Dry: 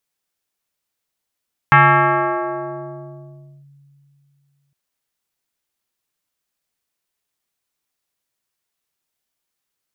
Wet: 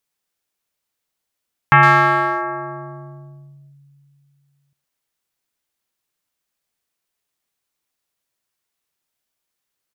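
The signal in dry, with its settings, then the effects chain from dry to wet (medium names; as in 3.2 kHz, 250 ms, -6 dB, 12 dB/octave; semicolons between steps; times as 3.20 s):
FM tone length 3.01 s, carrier 141 Hz, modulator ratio 3.49, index 3.7, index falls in 1.93 s linear, decay 3.02 s, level -5.5 dB
speakerphone echo 110 ms, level -8 dB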